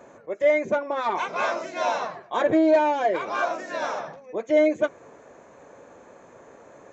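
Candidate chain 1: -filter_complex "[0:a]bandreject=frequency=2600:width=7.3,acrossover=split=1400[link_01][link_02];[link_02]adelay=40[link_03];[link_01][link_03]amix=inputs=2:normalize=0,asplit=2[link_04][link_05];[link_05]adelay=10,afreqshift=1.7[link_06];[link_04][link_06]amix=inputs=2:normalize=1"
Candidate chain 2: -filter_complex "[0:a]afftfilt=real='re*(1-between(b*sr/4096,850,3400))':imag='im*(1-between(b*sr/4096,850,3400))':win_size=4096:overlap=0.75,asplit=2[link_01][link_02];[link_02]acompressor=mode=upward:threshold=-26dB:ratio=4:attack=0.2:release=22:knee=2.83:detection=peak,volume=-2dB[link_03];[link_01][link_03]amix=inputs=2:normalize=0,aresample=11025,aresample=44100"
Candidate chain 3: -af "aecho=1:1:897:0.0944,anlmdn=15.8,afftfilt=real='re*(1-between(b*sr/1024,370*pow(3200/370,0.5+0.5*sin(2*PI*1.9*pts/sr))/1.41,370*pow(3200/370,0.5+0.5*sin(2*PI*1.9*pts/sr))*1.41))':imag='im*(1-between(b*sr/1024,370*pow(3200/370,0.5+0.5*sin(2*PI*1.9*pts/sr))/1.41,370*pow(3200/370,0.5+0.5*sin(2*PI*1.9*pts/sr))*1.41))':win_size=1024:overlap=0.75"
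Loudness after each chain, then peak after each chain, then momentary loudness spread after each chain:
−28.5, −20.5, −26.0 LKFS; −11.0, −5.5, −10.0 dBFS; 12, 21, 13 LU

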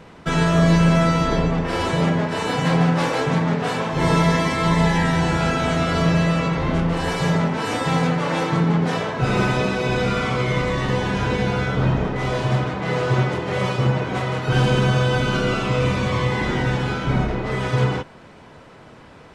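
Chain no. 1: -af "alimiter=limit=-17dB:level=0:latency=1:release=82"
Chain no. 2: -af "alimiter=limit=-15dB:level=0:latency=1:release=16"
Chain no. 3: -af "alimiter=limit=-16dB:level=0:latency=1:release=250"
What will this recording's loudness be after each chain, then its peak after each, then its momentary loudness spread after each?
−25.5, −23.5, −25.5 LKFS; −17.0, −15.0, −16.0 dBFS; 2, 2, 2 LU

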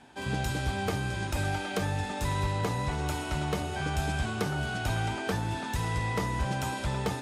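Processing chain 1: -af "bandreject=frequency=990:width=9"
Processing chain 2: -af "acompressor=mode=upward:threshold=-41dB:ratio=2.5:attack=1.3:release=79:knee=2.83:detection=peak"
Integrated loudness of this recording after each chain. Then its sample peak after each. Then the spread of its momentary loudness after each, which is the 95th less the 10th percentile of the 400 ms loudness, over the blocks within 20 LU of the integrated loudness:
−31.5, −31.5 LKFS; −18.5, −19.5 dBFS; 2, 2 LU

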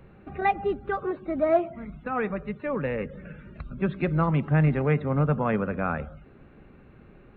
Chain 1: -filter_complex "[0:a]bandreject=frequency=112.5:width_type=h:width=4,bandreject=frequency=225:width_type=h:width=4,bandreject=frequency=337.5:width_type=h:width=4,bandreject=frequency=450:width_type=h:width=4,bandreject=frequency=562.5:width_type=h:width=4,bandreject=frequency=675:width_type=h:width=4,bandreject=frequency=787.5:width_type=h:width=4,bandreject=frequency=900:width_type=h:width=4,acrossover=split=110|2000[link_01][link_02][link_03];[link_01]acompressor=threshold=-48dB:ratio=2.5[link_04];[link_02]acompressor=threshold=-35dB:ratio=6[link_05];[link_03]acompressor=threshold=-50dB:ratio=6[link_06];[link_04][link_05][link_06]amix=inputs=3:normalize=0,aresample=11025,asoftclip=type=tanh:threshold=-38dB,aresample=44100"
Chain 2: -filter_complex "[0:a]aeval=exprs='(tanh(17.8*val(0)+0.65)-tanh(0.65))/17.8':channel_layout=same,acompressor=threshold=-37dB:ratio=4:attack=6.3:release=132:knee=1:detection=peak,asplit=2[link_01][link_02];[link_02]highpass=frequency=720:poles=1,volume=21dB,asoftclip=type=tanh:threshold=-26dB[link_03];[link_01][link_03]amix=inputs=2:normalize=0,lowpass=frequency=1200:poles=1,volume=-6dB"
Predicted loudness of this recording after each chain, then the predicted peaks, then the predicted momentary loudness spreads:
−43.5, −37.5 LKFS; −36.0, −26.5 dBFS; 12, 14 LU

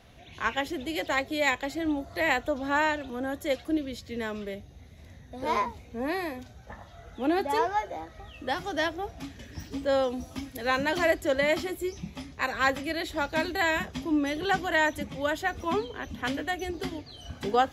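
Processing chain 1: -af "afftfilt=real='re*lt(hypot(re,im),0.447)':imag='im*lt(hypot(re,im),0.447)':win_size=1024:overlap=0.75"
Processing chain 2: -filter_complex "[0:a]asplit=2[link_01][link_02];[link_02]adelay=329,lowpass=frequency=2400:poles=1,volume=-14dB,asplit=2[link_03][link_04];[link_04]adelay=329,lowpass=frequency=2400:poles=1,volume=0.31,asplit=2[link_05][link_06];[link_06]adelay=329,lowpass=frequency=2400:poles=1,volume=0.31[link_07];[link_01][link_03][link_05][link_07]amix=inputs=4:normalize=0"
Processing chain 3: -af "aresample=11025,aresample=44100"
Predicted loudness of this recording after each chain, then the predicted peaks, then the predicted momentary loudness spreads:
−31.5, −29.0, −29.5 LKFS; −13.5, −11.0, −11.5 dBFS; 13, 14, 14 LU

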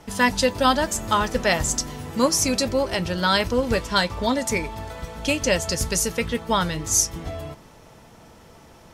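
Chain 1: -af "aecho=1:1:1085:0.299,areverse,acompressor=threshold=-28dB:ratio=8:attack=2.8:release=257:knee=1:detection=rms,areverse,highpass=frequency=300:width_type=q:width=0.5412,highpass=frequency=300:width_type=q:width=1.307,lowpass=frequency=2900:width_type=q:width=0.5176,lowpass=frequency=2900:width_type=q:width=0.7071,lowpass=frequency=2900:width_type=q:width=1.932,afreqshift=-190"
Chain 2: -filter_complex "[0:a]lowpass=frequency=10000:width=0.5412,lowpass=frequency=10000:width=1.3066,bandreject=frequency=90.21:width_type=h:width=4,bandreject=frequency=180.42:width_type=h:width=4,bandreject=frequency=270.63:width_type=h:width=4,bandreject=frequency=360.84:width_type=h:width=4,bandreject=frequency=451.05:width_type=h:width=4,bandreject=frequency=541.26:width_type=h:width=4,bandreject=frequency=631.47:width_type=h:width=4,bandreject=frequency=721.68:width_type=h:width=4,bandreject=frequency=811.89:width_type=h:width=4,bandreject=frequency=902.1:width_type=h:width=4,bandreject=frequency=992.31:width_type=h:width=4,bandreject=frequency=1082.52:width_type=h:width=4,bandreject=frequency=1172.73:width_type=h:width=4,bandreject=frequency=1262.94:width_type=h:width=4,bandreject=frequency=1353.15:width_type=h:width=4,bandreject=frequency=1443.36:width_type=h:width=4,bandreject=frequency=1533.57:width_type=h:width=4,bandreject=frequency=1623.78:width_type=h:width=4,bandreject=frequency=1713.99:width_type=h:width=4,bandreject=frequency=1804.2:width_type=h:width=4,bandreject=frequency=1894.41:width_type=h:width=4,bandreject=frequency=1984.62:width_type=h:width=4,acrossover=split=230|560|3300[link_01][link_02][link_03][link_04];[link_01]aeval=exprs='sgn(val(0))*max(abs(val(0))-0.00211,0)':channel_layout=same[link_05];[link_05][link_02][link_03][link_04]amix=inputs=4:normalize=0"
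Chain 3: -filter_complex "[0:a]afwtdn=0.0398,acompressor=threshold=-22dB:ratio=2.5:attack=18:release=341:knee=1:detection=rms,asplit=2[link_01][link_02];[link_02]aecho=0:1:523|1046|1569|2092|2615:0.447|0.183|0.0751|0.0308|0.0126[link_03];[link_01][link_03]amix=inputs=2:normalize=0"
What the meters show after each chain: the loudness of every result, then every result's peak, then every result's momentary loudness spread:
−38.0, −22.5, −26.0 LKFS; −22.5, −5.5, −10.0 dBFS; 8, 10, 9 LU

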